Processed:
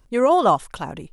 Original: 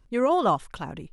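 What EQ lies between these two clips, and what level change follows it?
parametric band 690 Hz +4.5 dB 1.7 octaves
high-shelf EQ 5,700 Hz +9.5 dB
+2.0 dB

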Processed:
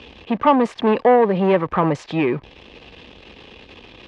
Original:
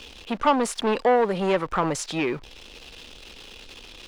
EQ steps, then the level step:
band-pass filter 100–2,400 Hz
low-shelf EQ 160 Hz +9 dB
notch filter 1,400 Hz, Q 6.9
+5.0 dB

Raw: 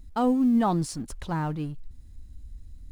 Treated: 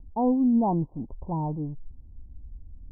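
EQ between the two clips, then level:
Butterworth low-pass 1,000 Hz 96 dB per octave
0.0 dB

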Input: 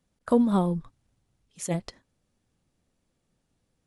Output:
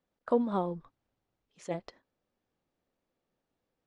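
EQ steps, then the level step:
bass and treble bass −15 dB, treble +4 dB
head-to-tape spacing loss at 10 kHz 39 dB
high-shelf EQ 4,300 Hz +9 dB
0.0 dB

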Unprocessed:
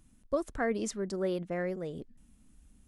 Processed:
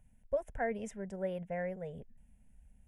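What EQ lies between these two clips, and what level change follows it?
high-shelf EQ 2,800 Hz −9 dB
phaser with its sweep stopped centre 1,200 Hz, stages 6
0.0 dB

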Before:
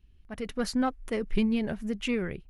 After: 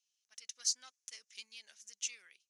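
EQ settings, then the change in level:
resonant band-pass 6,200 Hz, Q 4.9
high-frequency loss of the air 54 metres
first difference
+18.0 dB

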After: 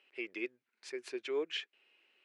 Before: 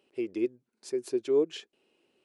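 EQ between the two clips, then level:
resonant band-pass 2,100 Hz, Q 1.9
+9.0 dB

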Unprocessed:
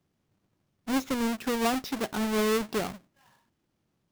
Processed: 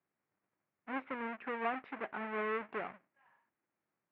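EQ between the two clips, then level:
high-pass filter 1,100 Hz 6 dB per octave
Butterworth low-pass 2,300 Hz 36 dB per octave
−2.5 dB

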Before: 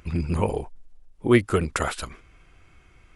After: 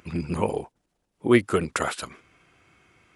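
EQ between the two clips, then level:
high-pass filter 140 Hz 12 dB per octave
0.0 dB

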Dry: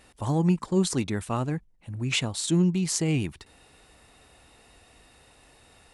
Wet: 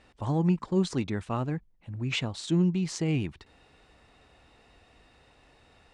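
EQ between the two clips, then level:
high-frequency loss of the air 110 metres
−2.0 dB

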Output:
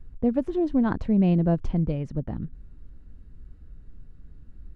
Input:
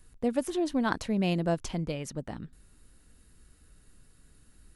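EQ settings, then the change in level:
head-to-tape spacing loss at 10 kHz 24 dB
spectral tilt −1.5 dB per octave
low-shelf EQ 310 Hz +7 dB
0.0 dB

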